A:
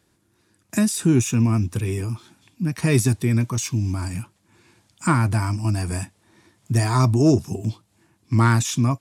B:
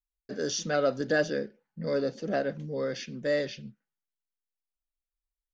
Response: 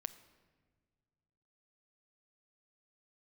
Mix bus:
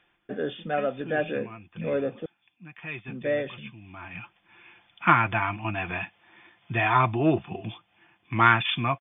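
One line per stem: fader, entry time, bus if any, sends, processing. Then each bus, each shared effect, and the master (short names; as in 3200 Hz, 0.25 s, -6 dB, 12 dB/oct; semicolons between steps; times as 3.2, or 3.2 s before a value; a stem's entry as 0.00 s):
-1.5 dB, 0.00 s, no send, tilt shelf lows -10 dB, about 680 Hz; comb 5.8 ms, depth 35%; auto duck -16 dB, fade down 0.75 s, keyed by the second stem
+0.5 dB, 0.00 s, muted 2.26–3.08, no send, vocal rider within 4 dB 0.5 s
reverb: off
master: brick-wall FIR low-pass 3600 Hz; small resonant body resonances 750/2500 Hz, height 9 dB, ringing for 40 ms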